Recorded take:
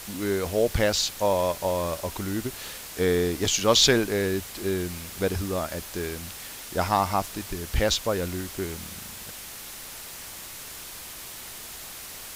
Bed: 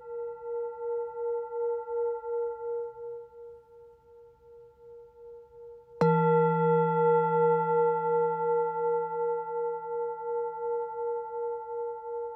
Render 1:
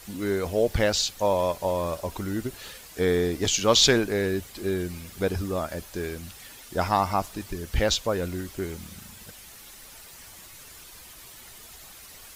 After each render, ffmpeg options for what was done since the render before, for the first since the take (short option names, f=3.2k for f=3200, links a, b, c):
-af "afftdn=nr=9:nf=-41"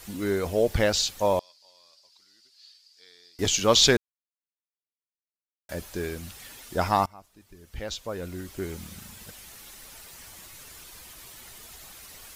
-filter_complex "[0:a]asettb=1/sr,asplit=3[a][b][c];[a]atrim=end=1.394[d];[b]atrim=start=1.39:end=3.39,asetpts=PTS-STARTPTS,afade=t=in:d=0.004:c=qsin,afade=t=out:st=1.996:d=0.004:c=qsin,bandpass=f=4.7k:t=q:w=9.4[e];[c]atrim=start=3.386[f];[d][e]acrossfade=d=0.004:c1=hsin:c2=qsin[g];[g][f]acrossfade=d=0.004:c1=qsin:c2=hsin,asplit=4[h][i][j][k];[h]atrim=end=3.97,asetpts=PTS-STARTPTS,afade=t=out:st=3.966:d=0.004:c=hsin[l];[i]atrim=start=3.97:end=5.69,asetpts=PTS-STARTPTS,volume=0[m];[j]atrim=start=5.69:end=7.06,asetpts=PTS-STARTPTS,afade=t=in:d=0.004:c=hsin,afade=t=out:st=1.366:d=0.004:c=hsin:silence=0.0668344[n];[k]atrim=start=7.06,asetpts=PTS-STARTPTS,afade=t=in:d=1.73:c=qua:silence=0.0668344[o];[l][m][n][o]concat=n=4:v=0:a=1"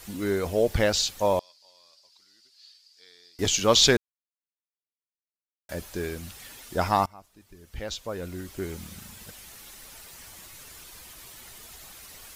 -af anull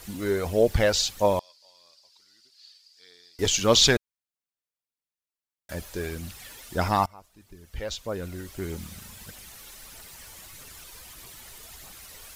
-af "aphaser=in_gain=1:out_gain=1:delay=2.3:decay=0.32:speed=1.6:type=triangular"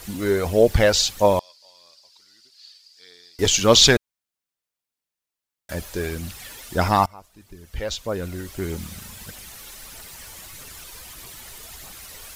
-af "volume=5dB"